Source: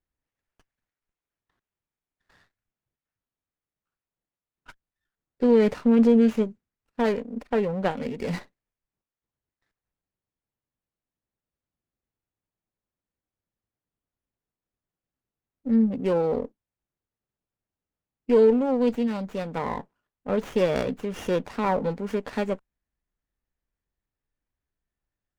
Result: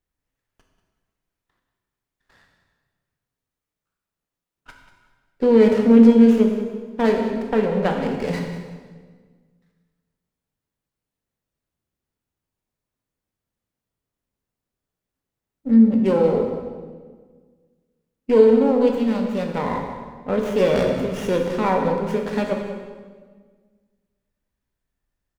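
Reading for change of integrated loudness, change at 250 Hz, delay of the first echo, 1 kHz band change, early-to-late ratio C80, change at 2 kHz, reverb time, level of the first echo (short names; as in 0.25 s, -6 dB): +6.0 dB, +6.5 dB, 0.188 s, +5.0 dB, 5.5 dB, +5.0 dB, 1.5 s, -13.0 dB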